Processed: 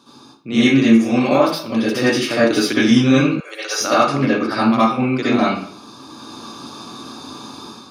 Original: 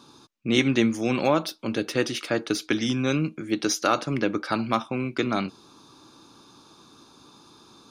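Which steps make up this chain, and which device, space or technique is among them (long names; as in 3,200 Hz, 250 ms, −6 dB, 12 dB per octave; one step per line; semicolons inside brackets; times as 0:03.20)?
far laptop microphone (convolution reverb RT60 0.50 s, pre-delay 58 ms, DRR −10 dB; high-pass filter 100 Hz; automatic gain control gain up to 9 dB)
0:03.40–0:03.81: elliptic high-pass filter 490 Hz, stop band 60 dB
level −1 dB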